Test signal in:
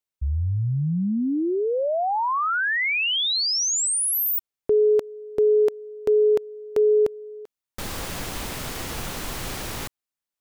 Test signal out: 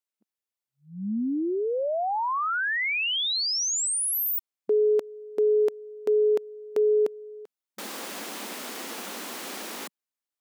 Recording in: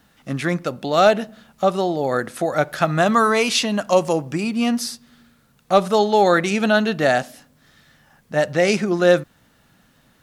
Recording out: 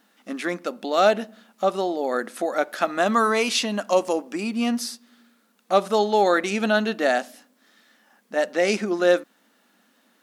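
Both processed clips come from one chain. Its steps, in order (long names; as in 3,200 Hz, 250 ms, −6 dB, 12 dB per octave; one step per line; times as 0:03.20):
linear-phase brick-wall high-pass 190 Hz
level −3.5 dB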